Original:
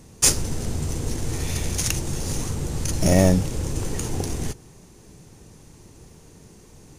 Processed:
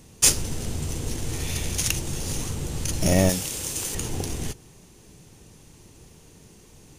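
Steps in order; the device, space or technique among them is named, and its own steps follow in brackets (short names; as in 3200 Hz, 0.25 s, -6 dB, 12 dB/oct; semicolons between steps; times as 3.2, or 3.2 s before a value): presence and air boost (bell 3000 Hz +5.5 dB 0.86 oct; high shelf 9000 Hz +6 dB); 3.29–3.95 tilt +3 dB/oct; gain -3 dB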